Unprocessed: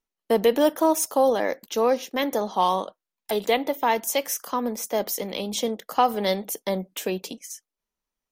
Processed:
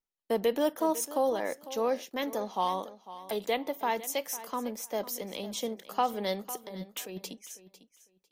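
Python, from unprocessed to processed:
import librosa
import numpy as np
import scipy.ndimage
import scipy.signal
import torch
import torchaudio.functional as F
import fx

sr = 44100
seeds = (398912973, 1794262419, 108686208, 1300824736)

y = fx.over_compress(x, sr, threshold_db=-31.0, ratio=-1.0, at=(6.5, 7.29))
y = fx.echo_feedback(y, sr, ms=500, feedback_pct=19, wet_db=-15.5)
y = y * 10.0 ** (-8.0 / 20.0)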